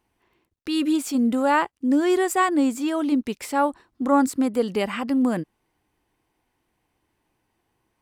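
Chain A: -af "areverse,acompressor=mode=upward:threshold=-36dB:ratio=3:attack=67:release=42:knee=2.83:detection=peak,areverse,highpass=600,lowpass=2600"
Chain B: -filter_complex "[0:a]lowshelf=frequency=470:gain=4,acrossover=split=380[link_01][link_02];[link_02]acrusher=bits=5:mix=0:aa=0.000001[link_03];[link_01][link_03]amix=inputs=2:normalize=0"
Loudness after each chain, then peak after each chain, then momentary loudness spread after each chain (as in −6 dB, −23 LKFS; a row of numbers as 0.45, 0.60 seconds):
−28.5, −20.5 LKFS; −9.5, −6.0 dBFS; 14, 7 LU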